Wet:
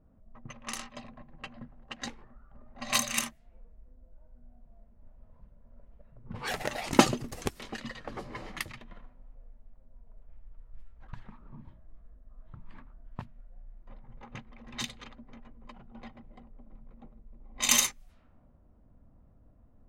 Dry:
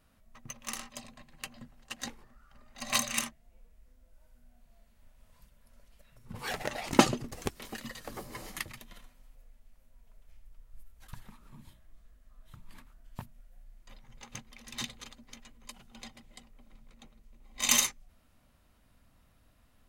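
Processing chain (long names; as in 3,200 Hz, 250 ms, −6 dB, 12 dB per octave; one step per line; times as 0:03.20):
low-pass that shuts in the quiet parts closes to 520 Hz, open at −34 dBFS
in parallel at −2 dB: downward compressor, threshold −51 dBFS, peak gain reduction 33 dB
on the sum: level +1 dB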